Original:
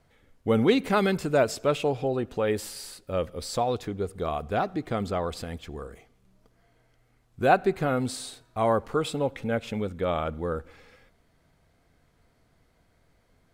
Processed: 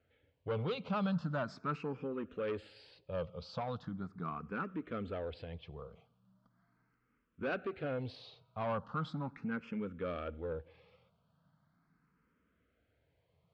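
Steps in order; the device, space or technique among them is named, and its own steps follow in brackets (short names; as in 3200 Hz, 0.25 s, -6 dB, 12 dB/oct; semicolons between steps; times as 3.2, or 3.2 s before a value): barber-pole phaser into a guitar amplifier (endless phaser +0.39 Hz; soft clip -23.5 dBFS, distortion -12 dB; speaker cabinet 80–3900 Hz, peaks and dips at 170 Hz +6 dB, 360 Hz -6 dB, 740 Hz -6 dB, 1300 Hz +4 dB, 2000 Hz -6 dB, 3700 Hz -4 dB); gain -5.5 dB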